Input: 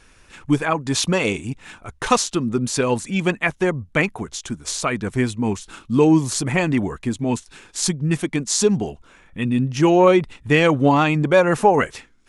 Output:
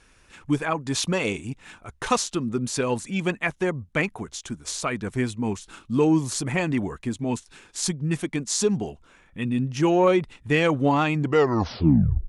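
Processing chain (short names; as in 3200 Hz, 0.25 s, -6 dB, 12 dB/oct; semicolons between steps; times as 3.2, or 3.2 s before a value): tape stop at the end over 1.10 s; added harmonics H 5 -35 dB, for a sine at -2 dBFS; gain -5.5 dB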